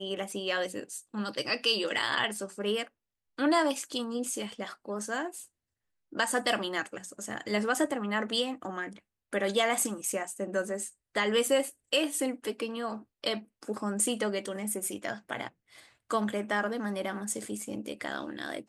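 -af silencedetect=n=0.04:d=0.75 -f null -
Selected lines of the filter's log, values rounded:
silence_start: 5.27
silence_end: 6.19 | silence_duration: 0.93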